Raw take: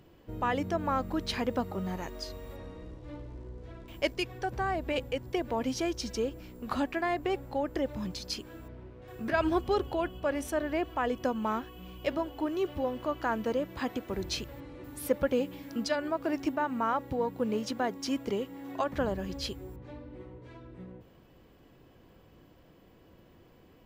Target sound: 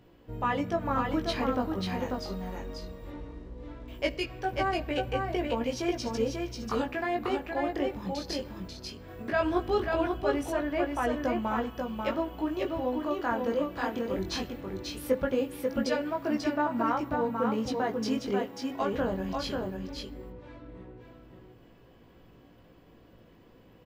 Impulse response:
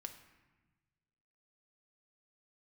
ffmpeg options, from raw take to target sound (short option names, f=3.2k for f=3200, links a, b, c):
-filter_complex "[0:a]flanger=delay=17:depth=4.4:speed=0.18,aecho=1:1:540:0.631,asplit=2[a][b];[1:a]atrim=start_sample=2205,lowpass=6k[c];[b][c]afir=irnorm=-1:irlink=0,volume=-2dB[d];[a][d]amix=inputs=2:normalize=0"